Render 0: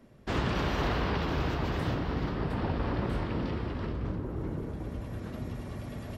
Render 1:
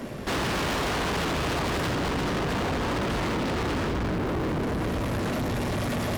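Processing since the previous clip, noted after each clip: low shelf 150 Hz -9 dB; limiter -31 dBFS, peak gain reduction 9.5 dB; sample leveller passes 5; gain +6 dB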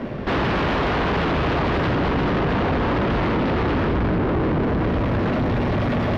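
air absorption 300 m; gain +7.5 dB

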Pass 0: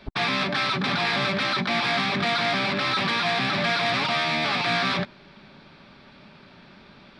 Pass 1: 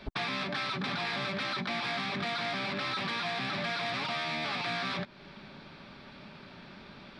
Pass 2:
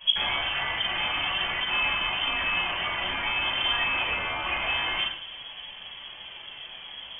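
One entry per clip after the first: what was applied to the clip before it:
compressor 3:1, threshold -34 dBFS, peak gain reduction 10.5 dB
flange 0.28 Hz, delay 0.2 ms, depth 4.2 ms, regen +66%; reverb RT60 0.70 s, pre-delay 4 ms, DRR -9.5 dB; inverted band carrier 3300 Hz

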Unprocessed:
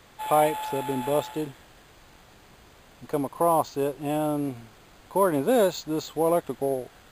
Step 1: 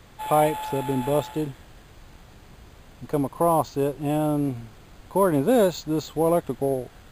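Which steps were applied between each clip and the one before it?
low shelf 210 Hz +10.5 dB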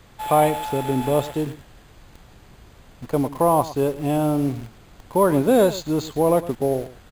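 in parallel at -8.5 dB: requantised 6-bit, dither none; on the sum: echo 0.111 s -16 dB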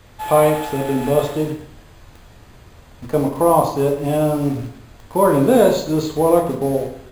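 plate-style reverb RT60 0.62 s, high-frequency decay 0.75×, DRR 1 dB; gain +1 dB

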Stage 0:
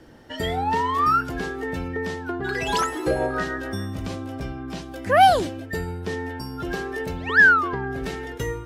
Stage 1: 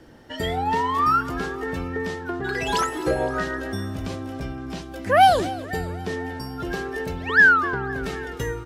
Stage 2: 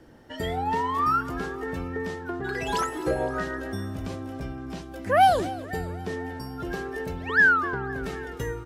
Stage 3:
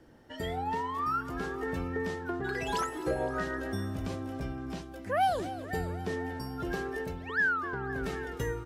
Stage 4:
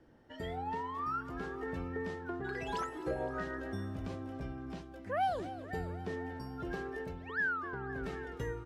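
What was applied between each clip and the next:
feedback echo 0.258 s, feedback 57%, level -18 dB
bell 3900 Hz -3.5 dB 2 oct; gain -3 dB
vocal rider within 4 dB 0.5 s; gain -6 dB
LPF 3500 Hz 6 dB/oct; gain -5 dB

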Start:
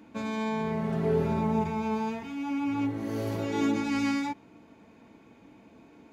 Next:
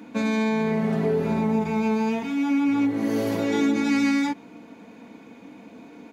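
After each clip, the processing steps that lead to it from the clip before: compressor, threshold -28 dBFS, peak gain reduction 7 dB; HPF 130 Hz 12 dB/oct; comb 4.1 ms, depth 39%; gain +8.5 dB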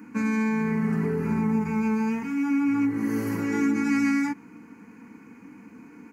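fixed phaser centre 1500 Hz, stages 4; gain +1 dB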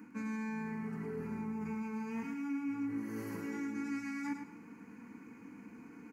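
reverse; compressor 6:1, threshold -31 dBFS, peak gain reduction 11 dB; reverse; feedback echo 0.106 s, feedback 28%, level -7.5 dB; gain -6 dB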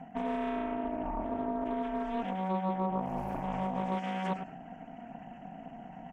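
formant sharpening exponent 1.5; ring modulator 470 Hz; Doppler distortion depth 0.41 ms; gain +8.5 dB

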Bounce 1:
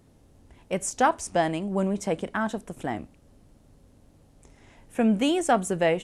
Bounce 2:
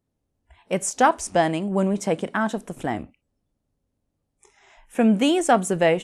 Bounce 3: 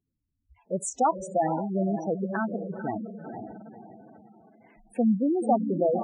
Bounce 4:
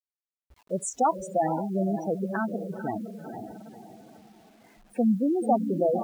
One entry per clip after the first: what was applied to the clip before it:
spectral noise reduction 24 dB; gain +4 dB
diffused feedback echo 0.488 s, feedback 41%, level -6 dB; spectral gate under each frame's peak -10 dB strong; gain -4.5 dB
bit-crush 10-bit

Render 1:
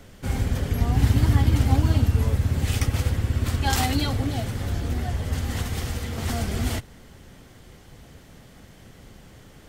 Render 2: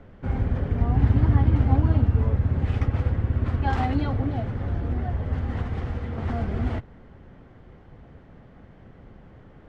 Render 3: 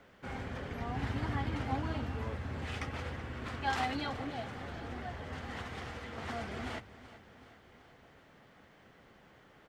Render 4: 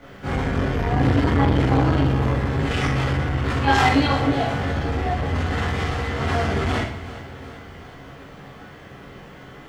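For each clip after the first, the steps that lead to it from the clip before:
LPF 1500 Hz 12 dB/oct
tilt +4 dB/oct; notches 50/100 Hz; feedback echo 0.378 s, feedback 57%, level -16 dB; gain -4.5 dB
low shelf 160 Hz +9 dB; reverb RT60 0.50 s, pre-delay 15 ms, DRR -8.5 dB; core saturation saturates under 400 Hz; gain +8 dB

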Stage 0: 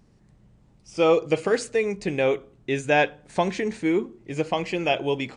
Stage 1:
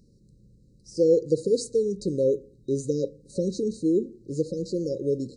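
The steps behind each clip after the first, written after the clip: FFT band-reject 570–3800 Hz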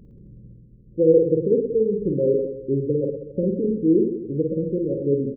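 reverse; upward compressor, threshold -43 dBFS; reverse; Gaussian blur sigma 12 samples; reverse bouncing-ball echo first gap 50 ms, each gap 1.2×, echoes 5; gain +4.5 dB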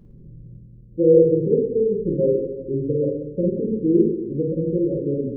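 reverb RT60 0.60 s, pre-delay 6 ms, DRR 1 dB; gain -2.5 dB

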